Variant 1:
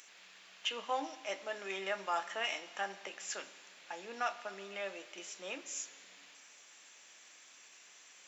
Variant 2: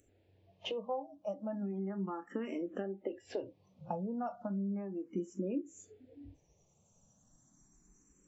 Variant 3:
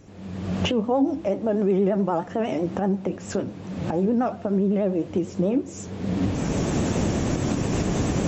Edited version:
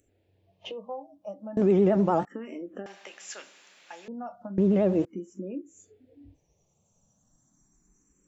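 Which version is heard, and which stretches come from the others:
2
1.57–2.25 from 3
2.86–4.08 from 1
4.58–5.05 from 3

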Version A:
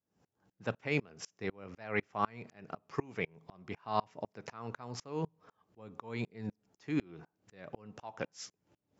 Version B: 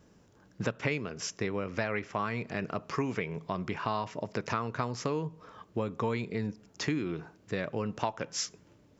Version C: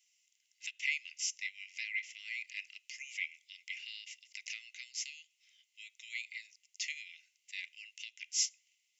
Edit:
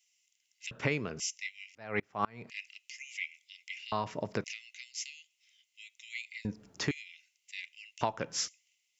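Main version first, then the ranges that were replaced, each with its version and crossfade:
C
0.71–1.2 from B
1.75–2.5 from A
3.92–4.44 from B
6.45–6.91 from B
8.01–8.48 from B

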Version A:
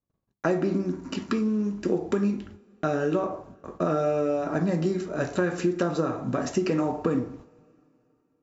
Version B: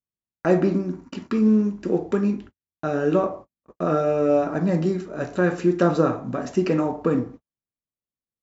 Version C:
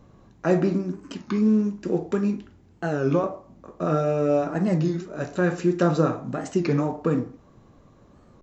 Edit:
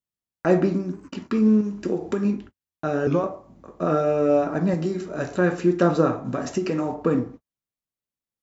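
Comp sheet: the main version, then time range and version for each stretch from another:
B
0.66–1.08 from C
1.61–2.25 from A
3.07–3.82 from C
4.74–5.36 from A
6.25–6.94 from A

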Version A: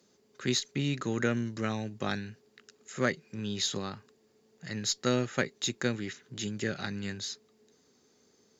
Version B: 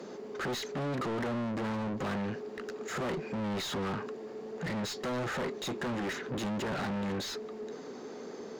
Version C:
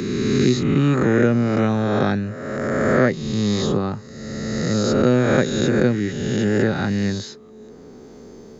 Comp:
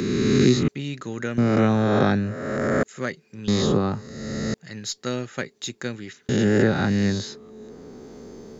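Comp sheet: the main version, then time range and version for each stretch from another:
C
0.68–1.38 from A
2.83–3.48 from A
4.54–6.29 from A
not used: B

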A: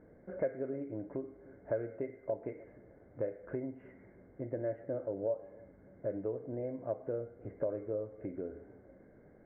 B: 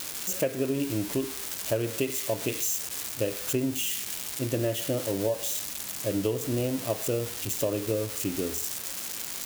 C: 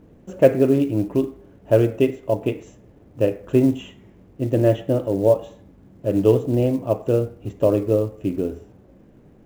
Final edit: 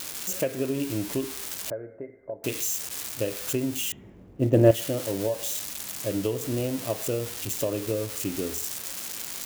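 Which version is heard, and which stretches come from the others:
B
1.7–2.44 from A
3.92–4.71 from C

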